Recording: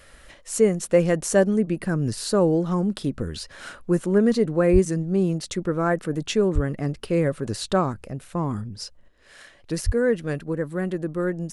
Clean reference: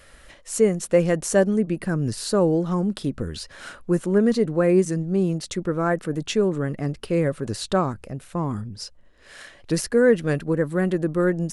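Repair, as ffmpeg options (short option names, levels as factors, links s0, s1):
-filter_complex "[0:a]asplit=3[s0][s1][s2];[s0]afade=t=out:st=4.72:d=0.02[s3];[s1]highpass=f=140:w=0.5412,highpass=f=140:w=1.3066,afade=t=in:st=4.72:d=0.02,afade=t=out:st=4.84:d=0.02[s4];[s2]afade=t=in:st=4.84:d=0.02[s5];[s3][s4][s5]amix=inputs=3:normalize=0,asplit=3[s6][s7][s8];[s6]afade=t=out:st=6.54:d=0.02[s9];[s7]highpass=f=140:w=0.5412,highpass=f=140:w=1.3066,afade=t=in:st=6.54:d=0.02,afade=t=out:st=6.66:d=0.02[s10];[s8]afade=t=in:st=6.66:d=0.02[s11];[s9][s10][s11]amix=inputs=3:normalize=0,asplit=3[s12][s13][s14];[s12]afade=t=out:st=9.85:d=0.02[s15];[s13]highpass=f=140:w=0.5412,highpass=f=140:w=1.3066,afade=t=in:st=9.85:d=0.02,afade=t=out:st=9.97:d=0.02[s16];[s14]afade=t=in:st=9.97:d=0.02[s17];[s15][s16][s17]amix=inputs=3:normalize=0,asetnsamples=n=441:p=0,asendcmd='9.08 volume volume 4.5dB',volume=1"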